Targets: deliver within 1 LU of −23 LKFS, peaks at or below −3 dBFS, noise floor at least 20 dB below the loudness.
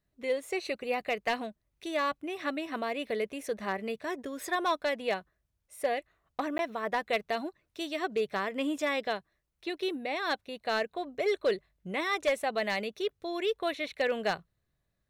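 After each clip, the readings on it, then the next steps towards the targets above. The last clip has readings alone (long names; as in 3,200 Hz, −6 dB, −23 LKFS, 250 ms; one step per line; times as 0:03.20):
share of clipped samples 0.2%; peaks flattened at −21.0 dBFS; number of dropouts 1; longest dropout 11 ms; integrated loudness −33.0 LKFS; sample peak −21.0 dBFS; target loudness −23.0 LKFS
→ clipped peaks rebuilt −21 dBFS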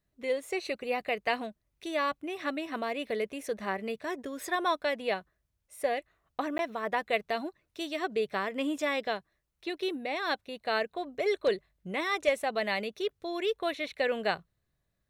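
share of clipped samples 0.0%; number of dropouts 1; longest dropout 11 ms
→ repair the gap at 0:06.58, 11 ms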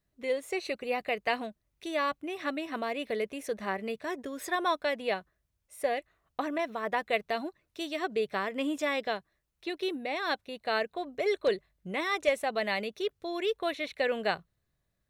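number of dropouts 0; integrated loudness −32.5 LKFS; sample peak −14.5 dBFS; target loudness −23.0 LKFS
→ level +9.5 dB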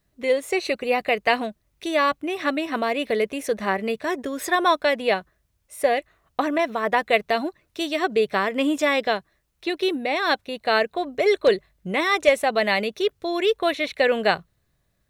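integrated loudness −23.0 LKFS; sample peak −5.0 dBFS; background noise floor −70 dBFS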